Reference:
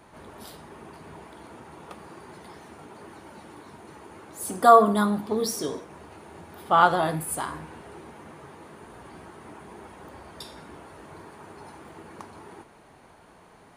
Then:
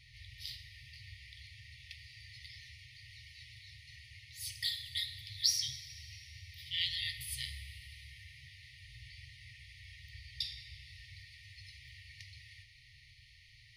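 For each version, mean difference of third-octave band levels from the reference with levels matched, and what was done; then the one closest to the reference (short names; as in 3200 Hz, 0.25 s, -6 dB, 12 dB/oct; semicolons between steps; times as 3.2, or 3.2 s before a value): 20.5 dB: FFT band-reject 130–1800 Hz; resonant high shelf 6200 Hz -8.5 dB, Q 3; plate-style reverb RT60 3.3 s, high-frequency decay 0.85×, DRR 12.5 dB; gain +1 dB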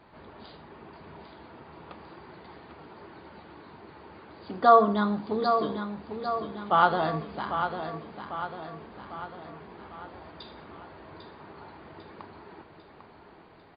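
5.0 dB: brick-wall FIR low-pass 4900 Hz; on a send: feedback echo 0.798 s, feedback 53%, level -8 dB; on the sum: gain -3 dB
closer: second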